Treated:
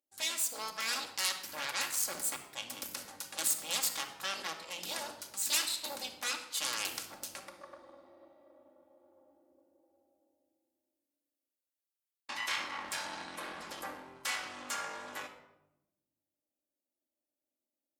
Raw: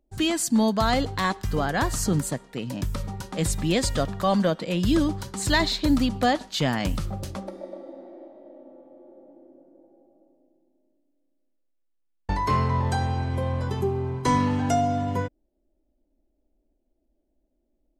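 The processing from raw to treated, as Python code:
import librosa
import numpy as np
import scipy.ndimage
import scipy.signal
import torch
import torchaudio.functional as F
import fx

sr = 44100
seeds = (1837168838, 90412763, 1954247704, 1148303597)

y = fx.octave_divider(x, sr, octaves=2, level_db=-3.0)
y = fx.highpass(y, sr, hz=150.0, slope=6)
y = fx.high_shelf(y, sr, hz=2400.0, db=-6.5)
y = fx.rider(y, sr, range_db=4, speed_s=0.5)
y = fx.cheby_harmonics(y, sr, harmonics=(3, 5, 6, 7), levels_db=(-12, -14, -6, -7), full_scale_db=-11.0)
y = np.diff(y, prepend=0.0)
y = fx.room_shoebox(y, sr, seeds[0], volume_m3=3400.0, walls='furnished', distance_m=2.3)
y = y * librosa.db_to_amplitude(-4.0)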